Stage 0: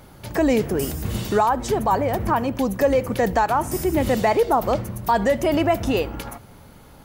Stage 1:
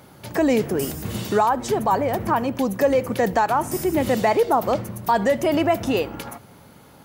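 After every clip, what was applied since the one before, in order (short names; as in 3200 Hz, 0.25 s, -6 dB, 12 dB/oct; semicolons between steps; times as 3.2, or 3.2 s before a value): HPF 110 Hz 12 dB/oct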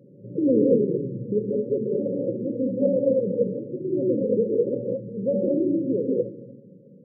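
non-linear reverb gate 0.25 s rising, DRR -3 dB; vocal rider within 5 dB 2 s; FFT band-pass 110–580 Hz; gain -5 dB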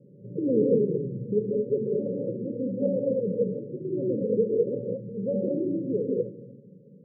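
rippled Chebyshev low-pass 620 Hz, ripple 6 dB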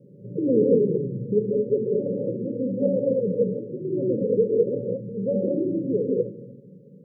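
de-hum 71.34 Hz, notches 5; gain +3.5 dB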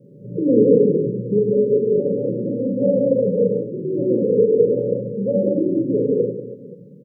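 reverse bouncing-ball echo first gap 40 ms, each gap 1.5×, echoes 5; gain +3 dB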